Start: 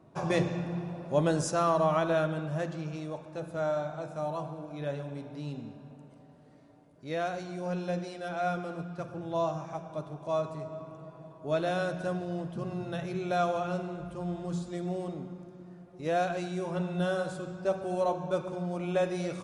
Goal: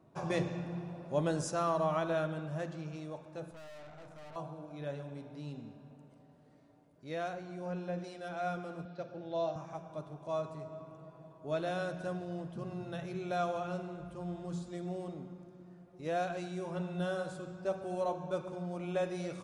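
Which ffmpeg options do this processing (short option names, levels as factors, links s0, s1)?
-filter_complex "[0:a]asettb=1/sr,asplit=3[s0][s1][s2];[s0]atrim=end=3.514[s3];[s1]atrim=start=3.51:end=4.36,asetpts=PTS-STARTPTS,afade=t=in:d=0.004:c=qsin,afade=t=out:st=0.846:d=0.004:c=qsin,aeval=exprs='(tanh(158*val(0)+0.6)-tanh(0.6))/158':c=same[s4];[s2]atrim=start=4.356[s5];[s3][s4]acrossfade=d=0.004:c1=hsin:c2=qsin[s6];[s6][s5]acrossfade=d=0.004:c1=qsin:c2=hsin,asettb=1/sr,asplit=3[s7][s8][s9];[s7]atrim=end=7.334[s10];[s8]atrim=start=7.33:end=8.04,asetpts=PTS-STARTPTS,afade=t=in:d=0.004:c=qsin,afade=t=out:st=0.706:d=0.004:c=qsin,acrossover=split=2700[s11][s12];[s12]acompressor=threshold=0.001:ratio=4:attack=1:release=60[s13];[s11][s13]amix=inputs=2:normalize=0[s14];[s9]atrim=start=8.036[s15];[s10][s14]acrossfade=d=0.004:c1=hsin:c2=qsin[s16];[s16][s15]acrossfade=d=0.004:c1=qsin:c2=hsin,asettb=1/sr,asplit=3[s17][s18][s19];[s17]atrim=end=8.854[s20];[s18]atrim=start=8.85:end=9.56,asetpts=PTS-STARTPTS,afade=t=in:d=0.004:c=qsin,afade=t=out:st=0.706:d=0.004:c=qsin,highpass=180,equalizer=f=570:t=q:w=4:g=6,equalizer=f=1100:t=q:w=4:g=-9,equalizer=f=4100:t=q:w=4:g=7,lowpass=f=5700:w=0.5412,lowpass=f=5700:w=1.3066[s21];[s19]atrim=start=9.556[s22];[s20][s21]acrossfade=d=0.004:c1=hsin:c2=qsin[s23];[s23][s22]acrossfade=d=0.004:c1=qsin:c2=hsin,volume=0.531"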